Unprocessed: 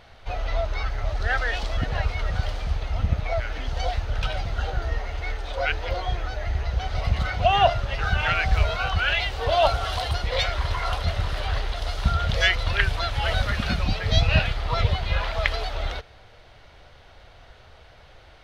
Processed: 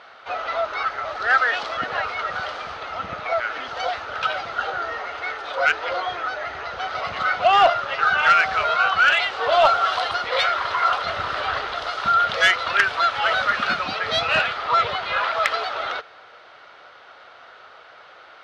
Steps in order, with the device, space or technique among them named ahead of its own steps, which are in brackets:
intercom (band-pass filter 380–5,000 Hz; parametric band 1,300 Hz +11 dB 0.5 octaves; soft clipping −11 dBFS, distortion −18 dB)
0:11.09–0:11.87: low-shelf EQ 200 Hz +9 dB
level +4 dB

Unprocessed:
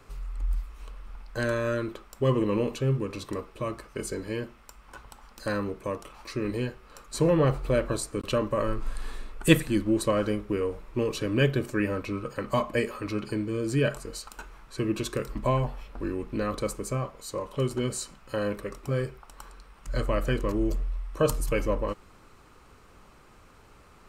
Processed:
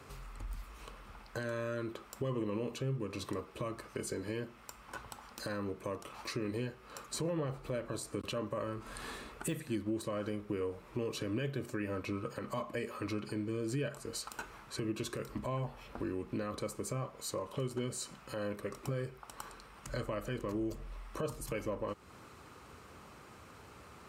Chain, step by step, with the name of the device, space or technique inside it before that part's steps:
podcast mastering chain (high-pass filter 65 Hz 24 dB per octave; de-essing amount 60%; downward compressor 2.5 to 1, threshold −39 dBFS, peak gain reduction 17 dB; brickwall limiter −28 dBFS, peak gain reduction 7 dB; level +2 dB; MP3 96 kbit/s 48,000 Hz)

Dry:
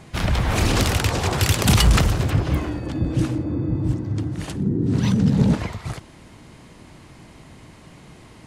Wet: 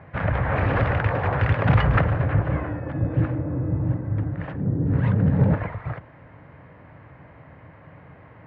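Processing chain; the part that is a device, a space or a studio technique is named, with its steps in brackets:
sub-octave bass pedal (sub-octave generator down 1 octave, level −5 dB; loudspeaker in its box 88–2,000 Hz, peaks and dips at 110 Hz +3 dB, 220 Hz −10 dB, 360 Hz −9 dB, 550 Hz +5 dB, 1,700 Hz +4 dB)

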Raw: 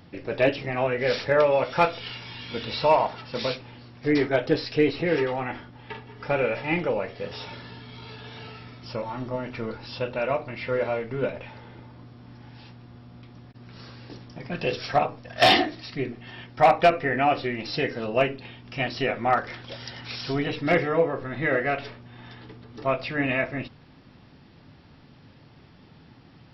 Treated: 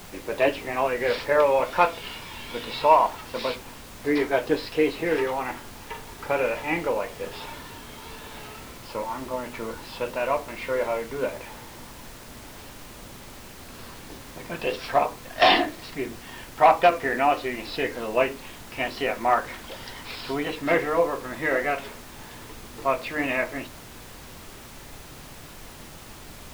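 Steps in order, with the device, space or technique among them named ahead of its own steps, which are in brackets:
horn gramophone (band-pass filter 250–4,300 Hz; parametric band 1,000 Hz +9 dB 0.22 octaves; tape wow and flutter; pink noise bed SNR 16 dB)

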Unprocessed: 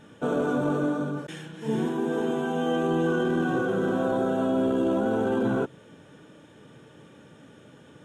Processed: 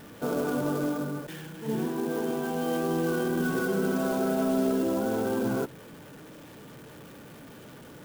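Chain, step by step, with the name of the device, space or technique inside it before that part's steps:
early CD player with a faulty converter (converter with a step at zero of −41.5 dBFS; converter with an unsteady clock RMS 0.04 ms)
0:03.39–0:04.83: comb filter 4.7 ms, depth 64%
level −3.5 dB

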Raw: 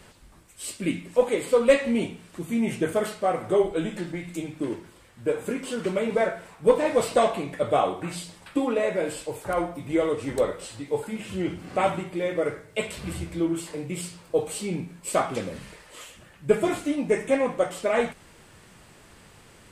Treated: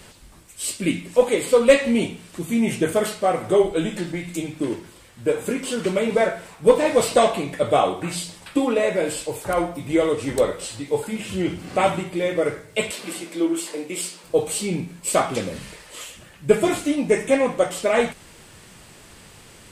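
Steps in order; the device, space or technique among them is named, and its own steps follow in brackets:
exciter from parts (in parallel at −4.5 dB: high-pass filter 2,100 Hz 12 dB per octave + soft clipping −23.5 dBFS, distortion −22 dB)
0:12.91–0:14.24: on the sum: high-pass filter 250 Hz 24 dB per octave
level +4.5 dB

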